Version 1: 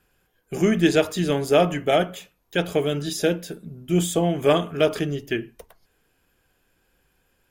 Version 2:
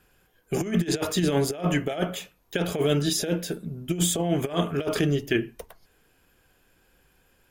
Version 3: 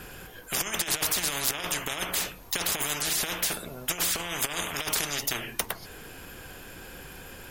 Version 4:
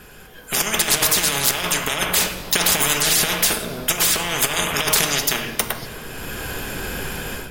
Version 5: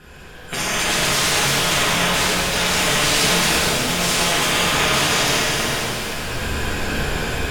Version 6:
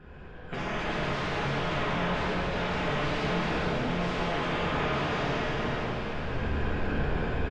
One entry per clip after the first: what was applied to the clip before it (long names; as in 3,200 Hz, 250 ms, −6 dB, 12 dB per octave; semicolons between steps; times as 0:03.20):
compressor whose output falls as the input rises −23 dBFS, ratio −0.5
every bin compressed towards the loudest bin 10 to 1
automatic gain control gain up to 16 dB; convolution reverb RT60 2.7 s, pre-delay 5 ms, DRR 6.5 dB; level −1 dB
brickwall limiter −9 dBFS, peak gain reduction 7 dB; high-frequency loss of the air 53 metres; reverb with rising layers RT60 3 s, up +7 semitones, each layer −8 dB, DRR −8 dB; level −3 dB
soft clipping −14 dBFS, distortion −16 dB; head-to-tape spacing loss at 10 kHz 41 dB; single-tap delay 1,025 ms −13.5 dB; level −3 dB